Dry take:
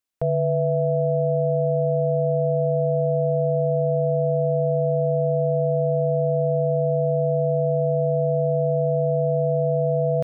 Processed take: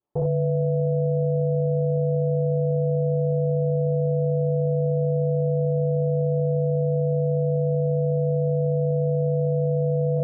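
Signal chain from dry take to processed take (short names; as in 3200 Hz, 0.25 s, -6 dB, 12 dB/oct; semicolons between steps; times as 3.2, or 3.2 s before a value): reverse echo 61 ms -6 dB; reverb, pre-delay 3 ms, DRR -13 dB; limiter -14 dBFS, peak gain reduction 12 dB; synth low-pass 710 Hz, resonance Q 1.6; tilt +2 dB/oct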